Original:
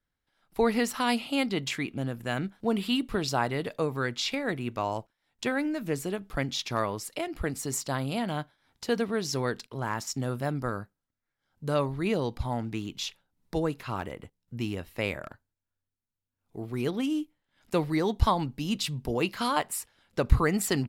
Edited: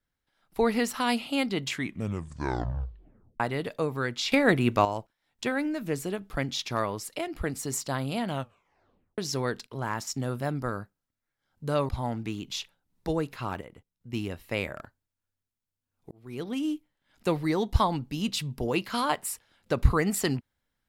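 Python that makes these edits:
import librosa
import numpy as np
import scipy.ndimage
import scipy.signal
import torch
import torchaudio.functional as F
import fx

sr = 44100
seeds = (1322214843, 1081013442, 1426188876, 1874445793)

y = fx.edit(x, sr, fx.tape_stop(start_s=1.71, length_s=1.69),
    fx.clip_gain(start_s=4.32, length_s=0.53, db=9.0),
    fx.tape_stop(start_s=8.3, length_s=0.88),
    fx.cut(start_s=11.89, length_s=0.47),
    fx.clip_gain(start_s=14.08, length_s=0.52, db=-7.0),
    fx.fade_in_span(start_s=16.58, length_s=0.58), tone=tone)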